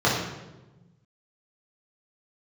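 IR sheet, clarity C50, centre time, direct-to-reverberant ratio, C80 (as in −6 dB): 2.0 dB, 58 ms, −7.0 dB, 4.5 dB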